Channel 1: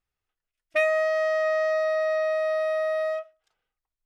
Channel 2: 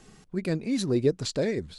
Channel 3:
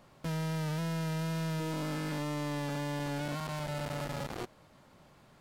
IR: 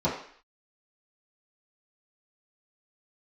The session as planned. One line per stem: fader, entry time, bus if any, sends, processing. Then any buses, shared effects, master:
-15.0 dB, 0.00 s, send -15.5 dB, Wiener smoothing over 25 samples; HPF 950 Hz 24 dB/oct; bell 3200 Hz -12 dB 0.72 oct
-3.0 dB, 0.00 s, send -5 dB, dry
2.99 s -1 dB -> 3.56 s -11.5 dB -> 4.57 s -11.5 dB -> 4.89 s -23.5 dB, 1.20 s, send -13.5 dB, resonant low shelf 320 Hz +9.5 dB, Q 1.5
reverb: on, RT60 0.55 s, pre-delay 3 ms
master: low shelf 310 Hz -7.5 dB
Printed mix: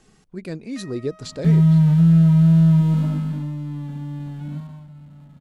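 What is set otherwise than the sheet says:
stem 2: send off; master: missing low shelf 310 Hz -7.5 dB

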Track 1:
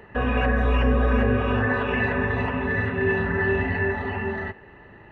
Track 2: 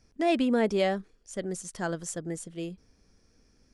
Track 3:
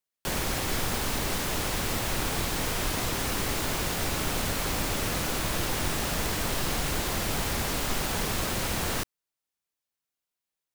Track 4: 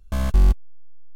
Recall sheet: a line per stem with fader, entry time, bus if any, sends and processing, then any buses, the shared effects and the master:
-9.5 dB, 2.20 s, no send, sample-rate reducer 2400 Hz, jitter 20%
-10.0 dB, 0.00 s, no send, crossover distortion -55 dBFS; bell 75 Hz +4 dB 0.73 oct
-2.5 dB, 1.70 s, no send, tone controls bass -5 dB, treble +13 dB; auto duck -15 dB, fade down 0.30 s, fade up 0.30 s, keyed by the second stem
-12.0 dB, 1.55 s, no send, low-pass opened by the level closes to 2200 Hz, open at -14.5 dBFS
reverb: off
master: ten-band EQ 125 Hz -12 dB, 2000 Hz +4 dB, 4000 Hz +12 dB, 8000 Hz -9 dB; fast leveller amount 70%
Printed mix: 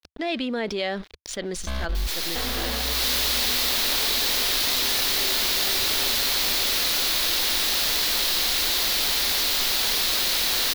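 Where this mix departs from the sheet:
stem 1 -9.5 dB -> -16.0 dB; stem 4: missing low-pass opened by the level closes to 2200 Hz, open at -14.5 dBFS

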